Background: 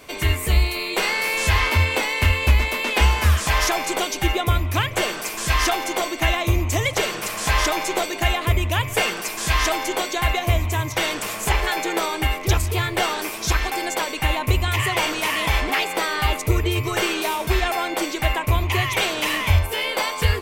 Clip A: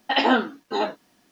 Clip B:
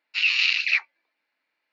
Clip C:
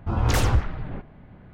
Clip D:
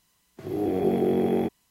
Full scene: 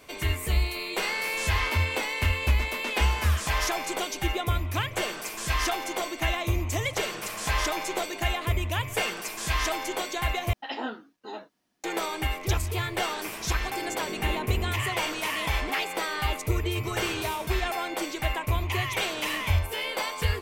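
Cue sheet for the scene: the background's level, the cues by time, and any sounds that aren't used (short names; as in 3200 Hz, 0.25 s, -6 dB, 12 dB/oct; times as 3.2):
background -7 dB
10.53 replace with A -14.5 dB
13.25 add D -14 dB + delta modulation 16 kbps, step -23.5 dBFS
16.71 add C -17 dB + HPF 74 Hz
not used: B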